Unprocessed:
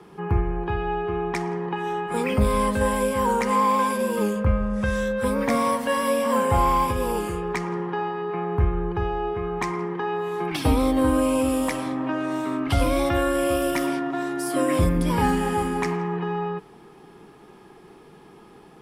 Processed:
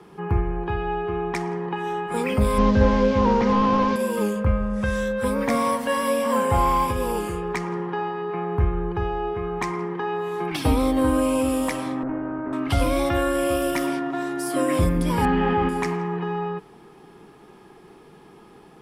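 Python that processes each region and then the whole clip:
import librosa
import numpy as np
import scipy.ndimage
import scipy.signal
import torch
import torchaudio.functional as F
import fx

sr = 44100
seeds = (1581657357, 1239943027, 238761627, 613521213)

y = fx.chain(x, sr, fx.delta_mod(bps=32000, step_db=-36.0),
    fx.low_shelf(hz=400.0, db=9.0), at=(2.58, 3.96))
y = fx.chain(y, sr, fx.lower_of_two(delay_ms=0.39),
    fx.lowpass(hz=1400.0, slope=24), at=(12.03, 12.53))
y = fx.chain(y, sr, fx.lowpass(hz=3300.0, slope=24),
    fx.env_flatten(amount_pct=70), at=(15.25, 15.69))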